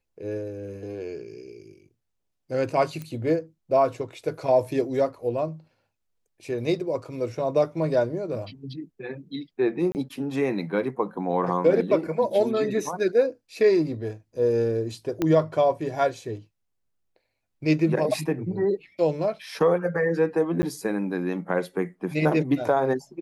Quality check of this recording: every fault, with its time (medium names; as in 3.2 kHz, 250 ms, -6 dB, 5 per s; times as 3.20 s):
3.02 s: pop -22 dBFS
9.92–9.95 s: dropout 29 ms
15.22 s: pop -12 dBFS
20.62–20.63 s: dropout 10 ms